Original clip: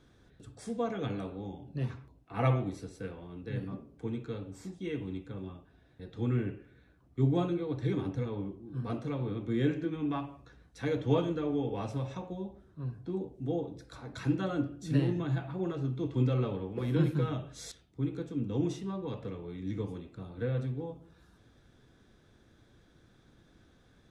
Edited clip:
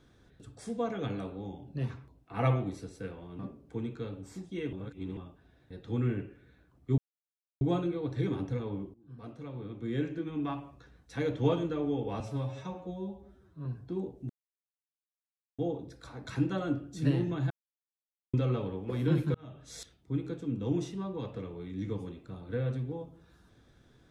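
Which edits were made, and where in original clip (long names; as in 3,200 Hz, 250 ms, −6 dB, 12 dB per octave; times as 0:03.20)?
0:03.39–0:03.68: remove
0:05.02–0:05.46: reverse
0:07.27: splice in silence 0.63 s
0:08.60–0:10.32: fade in, from −17 dB
0:11.86–0:12.83: time-stretch 1.5×
0:13.47: splice in silence 1.29 s
0:15.39–0:16.22: silence
0:17.23–0:17.70: fade in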